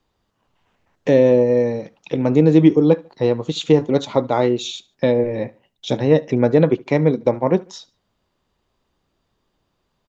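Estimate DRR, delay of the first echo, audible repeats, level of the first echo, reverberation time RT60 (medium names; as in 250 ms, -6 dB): no reverb, 73 ms, 2, -24.0 dB, no reverb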